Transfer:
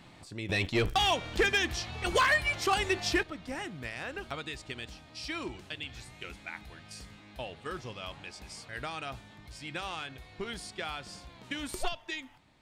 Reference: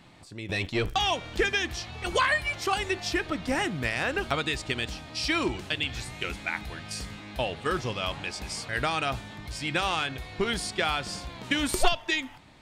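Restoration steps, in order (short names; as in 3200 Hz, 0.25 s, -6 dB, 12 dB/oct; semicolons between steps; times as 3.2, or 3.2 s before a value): clip repair -19.5 dBFS; gain 0 dB, from 3.23 s +10.5 dB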